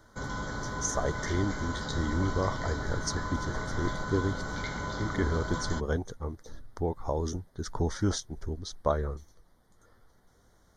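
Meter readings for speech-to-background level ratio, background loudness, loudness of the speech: 2.5 dB, −36.0 LKFS, −33.5 LKFS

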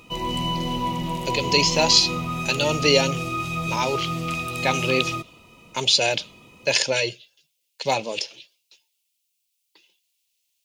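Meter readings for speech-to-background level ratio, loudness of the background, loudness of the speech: 5.0 dB, −27.0 LKFS, −22.0 LKFS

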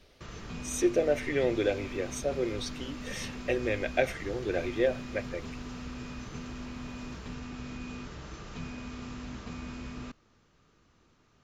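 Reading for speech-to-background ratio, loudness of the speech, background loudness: 10.0 dB, −31.5 LKFS, −41.5 LKFS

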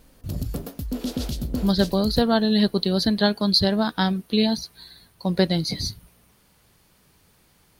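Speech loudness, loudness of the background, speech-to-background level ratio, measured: −22.0 LKFS, −31.5 LKFS, 9.5 dB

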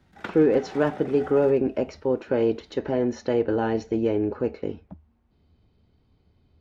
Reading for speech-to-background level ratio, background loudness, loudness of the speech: 17.5 dB, −42.0 LKFS, −24.5 LKFS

